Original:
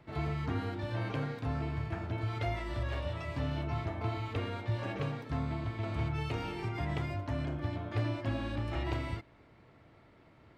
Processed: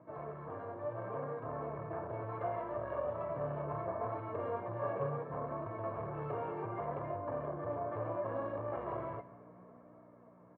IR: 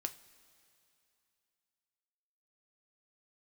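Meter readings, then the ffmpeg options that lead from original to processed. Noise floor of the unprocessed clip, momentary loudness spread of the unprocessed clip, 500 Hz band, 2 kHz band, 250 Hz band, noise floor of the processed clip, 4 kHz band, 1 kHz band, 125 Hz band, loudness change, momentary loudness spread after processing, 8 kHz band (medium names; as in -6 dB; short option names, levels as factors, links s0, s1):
-61 dBFS, 2 LU, +3.5 dB, -9.5 dB, -7.5 dB, -59 dBFS, under -25 dB, +1.5 dB, -10.5 dB, -3.5 dB, 7 LU, no reading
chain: -af "aresample=16000,asoftclip=type=tanh:threshold=0.015,aresample=44100,aecho=1:1:1.8:0.54,crystalizer=i=3:c=0,equalizer=f=190:w=1:g=-12.5,aeval=exprs='val(0)+0.00126*(sin(2*PI*60*n/s)+sin(2*PI*2*60*n/s)/2+sin(2*PI*3*60*n/s)/3+sin(2*PI*4*60*n/s)/4+sin(2*PI*5*60*n/s)/5)':c=same,flanger=delay=3.1:depth=4.1:regen=66:speed=0.7:shape=sinusoidal,lowpass=f=1100:w=0.5412,lowpass=f=1100:w=1.3066,aecho=1:1:146:0.141,dynaudnorm=f=140:g=17:m=1.78,highpass=f=140:w=0.5412,highpass=f=140:w=1.3066,volume=2.37"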